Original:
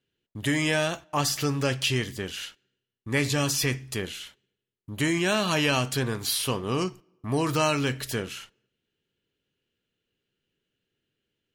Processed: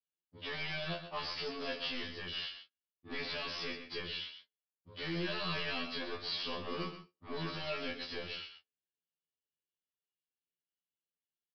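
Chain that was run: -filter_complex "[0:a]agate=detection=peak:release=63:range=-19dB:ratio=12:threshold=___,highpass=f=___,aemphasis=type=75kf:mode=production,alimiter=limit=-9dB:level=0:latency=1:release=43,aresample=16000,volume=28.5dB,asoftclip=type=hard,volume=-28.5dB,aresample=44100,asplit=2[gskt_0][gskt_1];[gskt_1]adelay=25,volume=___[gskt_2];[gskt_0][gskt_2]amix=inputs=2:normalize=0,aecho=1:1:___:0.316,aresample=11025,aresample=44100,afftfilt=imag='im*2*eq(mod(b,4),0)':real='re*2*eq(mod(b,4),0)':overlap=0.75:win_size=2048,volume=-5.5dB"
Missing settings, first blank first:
-49dB, 110, -6.5dB, 128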